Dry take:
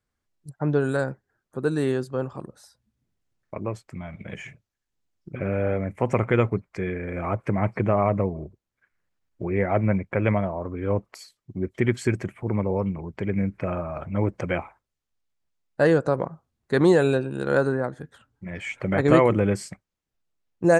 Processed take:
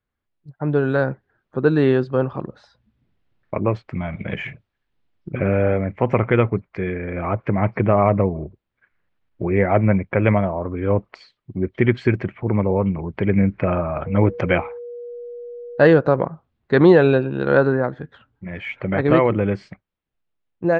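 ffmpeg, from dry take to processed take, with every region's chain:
-filter_complex "[0:a]asettb=1/sr,asplit=3[s0][s1][s2];[s0]atrim=end=14.064[s3];[s1]atrim=start=14.06:end=15.94,asetpts=PTS-STARTPTS,afade=t=in:d=0.004:c=qsin,afade=t=out:st=1.876:d=0.004:c=qsin,highshelf=f=6200:g=11,aeval=exprs='val(0)+0.0126*sin(2*PI*480*n/s)':c=same[s4];[s2]atrim=start=15.936[s5];[s3][s4]acrossfade=d=0.004:c1=hsin:c2=qsin[s6];[s6][s5]acrossfade=d=0.004:c1=qsin:c2=hsin,lowpass=f=3700:w=0.5412,lowpass=f=3700:w=1.3066,dynaudnorm=f=580:g=3:m=3.76,volume=0.891"

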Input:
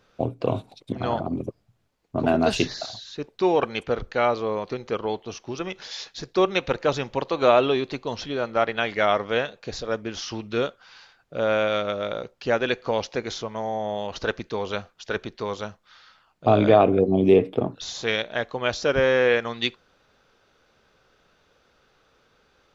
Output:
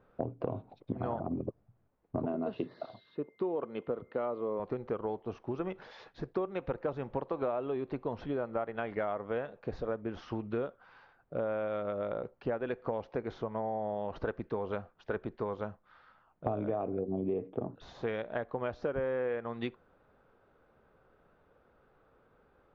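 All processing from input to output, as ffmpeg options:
-filter_complex "[0:a]asettb=1/sr,asplit=3[s0][s1][s2];[s0]atrim=end=2.264[s3];[s1]atrim=start=2.26:end=4.6,asetpts=PTS-STARTPTS,afade=t=in:d=0.004:c=qsin,afade=t=out:st=2.336:d=0.004:c=qsin,aeval=exprs='val(0)+0.00251*sin(2*PI*2100*n/s)':c=same,highpass=180,equalizer=f=790:t=q:w=4:g=-8,equalizer=f=1600:t=q:w=4:g=-8,equalizer=f=2300:t=q:w=4:g=-6,lowpass=f=4000:w=0.5412,lowpass=f=4000:w=1.3066[s4];[s2]atrim=start=4.596[s5];[s3][s4]acrossfade=d=0.004:c1=hsin:c2=qsin[s6];[s6][s5]acrossfade=d=0.004:c1=qsin:c2=hsin,lowpass=1200,acompressor=threshold=0.0355:ratio=8,volume=0.841"

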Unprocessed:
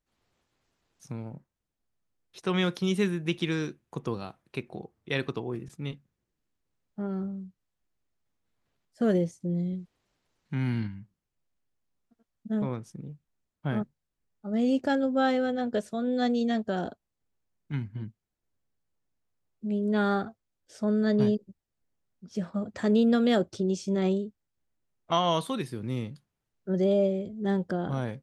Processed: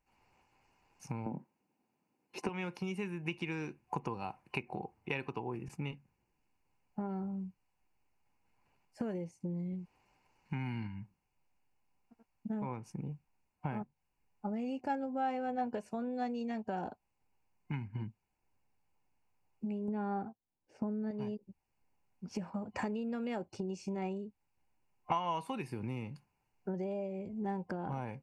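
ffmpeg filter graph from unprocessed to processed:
-filter_complex "[0:a]asettb=1/sr,asplit=3[s0][s1][s2];[s0]atrim=end=1.264[s3];[s1]atrim=start=1.26:end=2.49,asetpts=PTS-STARTPTS,afade=t=in:d=0.004:c=qsin,afade=t=out:st=1.226:d=0.004:c=qsin,highpass=180,equalizer=f=250:w=0.6:g=13[s4];[s2]atrim=start=2.486[s5];[s3][s4]acrossfade=d=0.004:c1=hsin:c2=qsin[s6];[s6][s5]acrossfade=d=0.004:c1=qsin:c2=hsin,asettb=1/sr,asplit=3[s7][s8][s9];[s7]atrim=end=19.884[s10];[s8]atrim=start=19.88:end=21.11,asetpts=PTS-STARTPTS,afade=t=in:d=0.004:c=qsin,afade=t=out:st=1.226:d=0.004:c=qsin,agate=range=0.282:threshold=0.00355:ratio=16:release=100:detection=peak,lowpass=f=2100:p=1,equalizer=f=240:w=0.56:g=8[s11];[s9]atrim=start=21.106[s12];[s10][s11]acrossfade=d=0.004:c1=hsin:c2=qsin[s13];[s13][s12]acrossfade=d=0.004:c1=qsin:c2=hsin,bass=f=250:g=0,treble=f=4000:g=-4,acompressor=threshold=0.0126:ratio=10,superequalizer=9b=3.16:12b=2.24:13b=0.316,volume=1.33"

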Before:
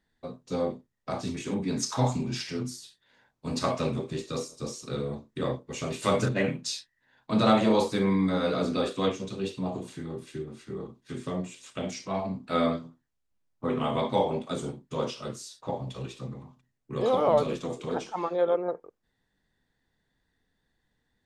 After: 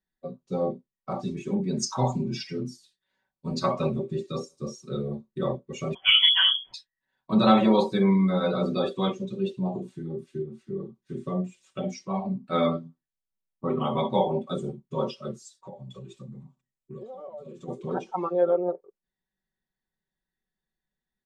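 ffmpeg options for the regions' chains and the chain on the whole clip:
-filter_complex "[0:a]asettb=1/sr,asplit=3[s0][s1][s2];[s0]atrim=end=5.944[s3];[s1]atrim=start=5.94:end=6.74,asetpts=PTS-STARTPTS,afade=t=in:d=0.004:c=qsin,afade=t=out:st=0.796:d=0.004:c=qsin,lowpass=f=3000:t=q:w=0.5098,lowpass=f=3000:t=q:w=0.6013,lowpass=f=3000:t=q:w=0.9,lowpass=f=3000:t=q:w=2.563,afreqshift=-3500,adynamicequalizer=threshold=0.0158:dfrequency=1600:dqfactor=0.7:tfrequency=1600:tqfactor=0.7:attack=5:release=100:ratio=0.375:range=2.5:mode=boostabove:tftype=highshelf[s4];[s2]atrim=start=6.736[s5];[s3][s4]acrossfade=d=0.004:c1=hsin:c2=qsin[s6];[s6][s5]acrossfade=d=0.004:c1=qsin:c2=hsin,asettb=1/sr,asplit=3[s7][s8][s9];[s7]atrim=end=15.454[s10];[s8]atrim=start=15.45:end=17.68,asetpts=PTS-STARTPTS,afade=t=in:d=0.004:c=qsin,afade=t=out:st=2.226:d=0.004:c=qsin,acompressor=threshold=0.0141:ratio=20:attack=3.2:release=140:knee=1:detection=peak,equalizer=f=7600:w=3.2:g=8.5[s11];[s9]atrim=start=17.676[s12];[s10][s11]acrossfade=d=0.004:c1=hsin:c2=qsin[s13];[s13][s12]acrossfade=d=0.004:c1=qsin:c2=hsin,afftdn=nr=16:nf=-36,aecho=1:1:5.3:0.8"

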